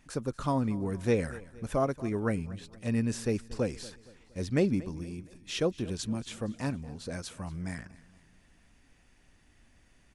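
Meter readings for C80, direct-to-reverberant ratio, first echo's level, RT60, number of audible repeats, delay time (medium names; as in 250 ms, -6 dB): no reverb, no reverb, -19.5 dB, no reverb, 3, 233 ms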